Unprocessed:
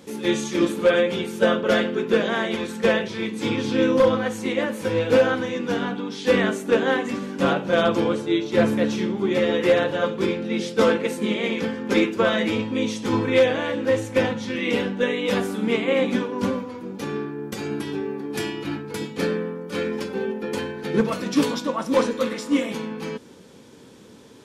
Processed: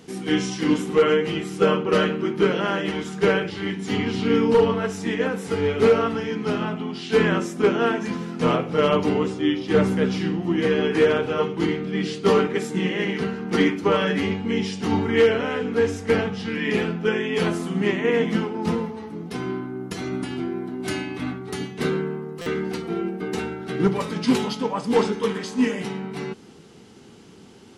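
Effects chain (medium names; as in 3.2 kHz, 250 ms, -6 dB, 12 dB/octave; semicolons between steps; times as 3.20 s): tape speed -12%; buffer glitch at 22.41 s, samples 256, times 8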